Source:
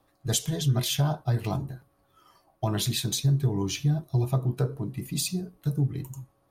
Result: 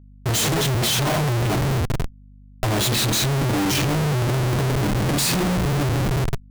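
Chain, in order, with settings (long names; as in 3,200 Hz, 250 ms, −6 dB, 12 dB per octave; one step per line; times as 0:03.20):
coupled-rooms reverb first 0.27 s, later 2.9 s, from −20 dB, DRR −7 dB
comparator with hysteresis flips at −31.5 dBFS
mains hum 50 Hz, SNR 25 dB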